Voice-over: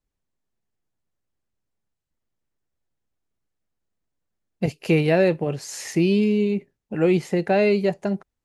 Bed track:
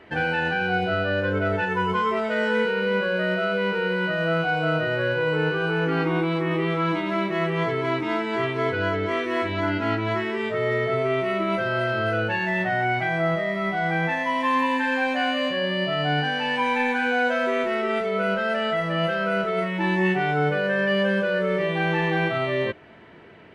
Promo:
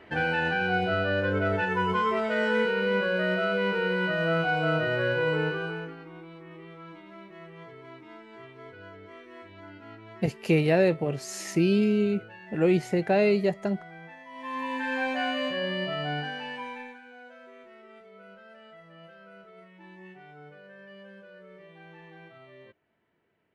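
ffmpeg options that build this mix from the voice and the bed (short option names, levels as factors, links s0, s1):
-filter_complex "[0:a]adelay=5600,volume=0.668[s0];[1:a]volume=5.31,afade=t=out:st=5.29:d=0.67:silence=0.105925,afade=t=in:st=14.3:d=0.72:silence=0.141254,afade=t=out:st=15.7:d=1.31:silence=0.0841395[s1];[s0][s1]amix=inputs=2:normalize=0"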